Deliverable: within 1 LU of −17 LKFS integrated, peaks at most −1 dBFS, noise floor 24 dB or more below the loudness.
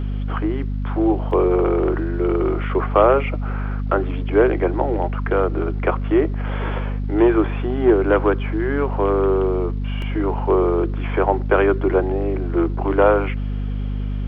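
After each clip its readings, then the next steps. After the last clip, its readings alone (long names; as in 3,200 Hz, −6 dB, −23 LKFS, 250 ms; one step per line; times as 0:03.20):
number of dropouts 2; longest dropout 1.8 ms; mains hum 50 Hz; hum harmonics up to 250 Hz; level of the hum −21 dBFS; integrated loudness −20.0 LKFS; sample peak −2.0 dBFS; target loudness −17.0 LKFS
→ repair the gap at 0:01.31/0:10.02, 1.8 ms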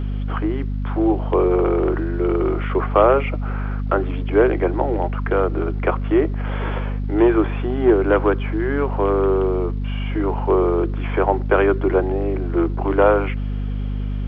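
number of dropouts 0; mains hum 50 Hz; hum harmonics up to 250 Hz; level of the hum −21 dBFS
→ mains-hum notches 50/100/150/200/250 Hz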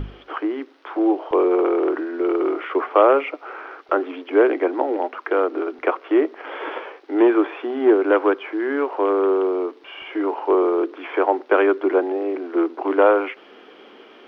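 mains hum none found; integrated loudness −20.5 LKFS; sample peak −2.5 dBFS; target loudness −17.0 LKFS
→ level +3.5 dB
brickwall limiter −1 dBFS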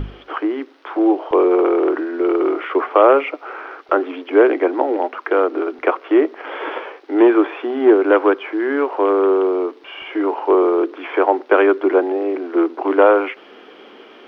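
integrated loudness −17.0 LKFS; sample peak −1.0 dBFS; background noise floor −44 dBFS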